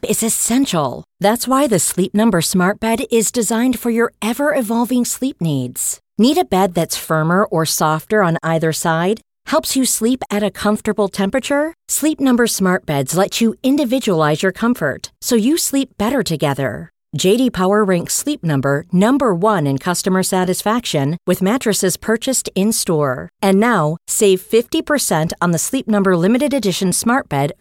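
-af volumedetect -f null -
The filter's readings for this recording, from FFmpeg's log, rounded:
mean_volume: -16.1 dB
max_volume: -2.4 dB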